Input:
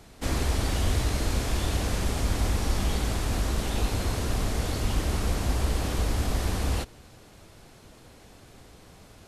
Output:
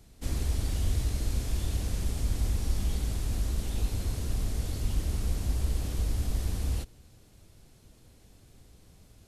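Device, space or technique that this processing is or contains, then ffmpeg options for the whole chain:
smiley-face EQ: -af "lowshelf=f=130:g=7.5,equalizer=f=1.1k:t=o:w=2.4:g=-6.5,highshelf=f=8.3k:g=5.5,volume=-8dB"

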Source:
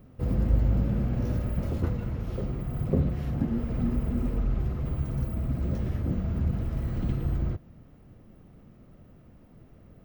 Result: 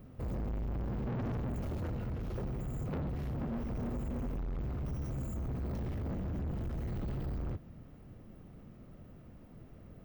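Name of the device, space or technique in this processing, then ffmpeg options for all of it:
saturation between pre-emphasis and de-emphasis: -filter_complex "[0:a]asettb=1/sr,asplit=3[a][b][c];[a]atrim=end=1.074[d];[b]atrim=start=1.07:end=1.56,asetpts=PTS-STARTPTS,afade=t=in:d=0.004:c=qsin,afade=t=out:st=0.486:d=0.004:c=qsin,equalizer=f=125:t=o:w=1:g=8,equalizer=f=250:t=o:w=1:g=9,equalizer=f=16k:t=o:w=1:g=-9[e];[c]atrim=start=1.556[f];[d][e]acrossfade=d=0.004:c1=hsin:c2=qsin[g];[g][f]acrossfade=d=0.004:c1=qsin:c2=hsin,highshelf=f=6.9k:g=10,asoftclip=type=tanh:threshold=-34dB,highshelf=f=6.9k:g=-10"

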